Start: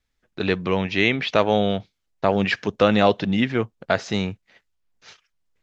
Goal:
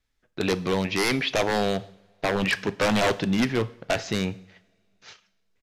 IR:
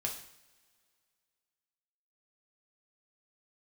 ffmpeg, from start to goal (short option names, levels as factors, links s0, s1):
-filter_complex "[0:a]aeval=exprs='0.178*(abs(mod(val(0)/0.178+3,4)-2)-1)':c=same,asplit=2[s0][s1];[1:a]atrim=start_sample=2205[s2];[s1][s2]afir=irnorm=-1:irlink=0,volume=0.299[s3];[s0][s3]amix=inputs=2:normalize=0,aresample=32000,aresample=44100,volume=0.75"